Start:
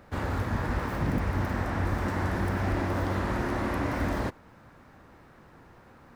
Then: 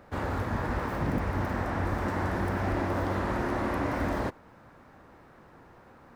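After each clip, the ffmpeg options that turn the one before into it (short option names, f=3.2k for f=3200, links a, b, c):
-af "equalizer=f=650:w=0.43:g=4.5,volume=-3dB"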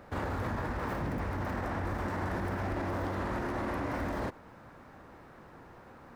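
-af "alimiter=level_in=3.5dB:limit=-24dB:level=0:latency=1:release=51,volume=-3.5dB,volume=1.5dB"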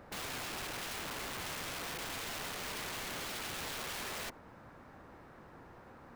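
-af "aeval=exprs='(mod(50.1*val(0)+1,2)-1)/50.1':c=same,volume=-2.5dB"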